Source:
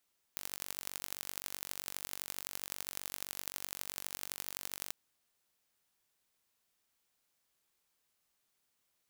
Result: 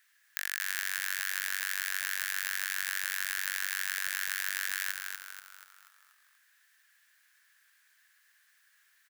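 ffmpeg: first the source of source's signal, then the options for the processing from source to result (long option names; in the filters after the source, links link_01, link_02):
-f lavfi -i "aevalsrc='0.299*eq(mod(n,926),0)*(0.5+0.5*eq(mod(n,3704),0))':duration=4.54:sample_rate=44100"
-filter_complex "[0:a]asplit=2[link_01][link_02];[link_02]aeval=exprs='0.316*sin(PI/2*1.78*val(0)/0.316)':channel_layout=same,volume=-5dB[link_03];[link_01][link_03]amix=inputs=2:normalize=0,highpass=frequency=1700:width_type=q:width=10,asplit=7[link_04][link_05][link_06][link_07][link_08][link_09][link_10];[link_05]adelay=241,afreqshift=-75,volume=-5dB[link_11];[link_06]adelay=482,afreqshift=-150,volume=-11.6dB[link_12];[link_07]adelay=723,afreqshift=-225,volume=-18.1dB[link_13];[link_08]adelay=964,afreqshift=-300,volume=-24.7dB[link_14];[link_09]adelay=1205,afreqshift=-375,volume=-31.2dB[link_15];[link_10]adelay=1446,afreqshift=-450,volume=-37.8dB[link_16];[link_04][link_11][link_12][link_13][link_14][link_15][link_16]amix=inputs=7:normalize=0"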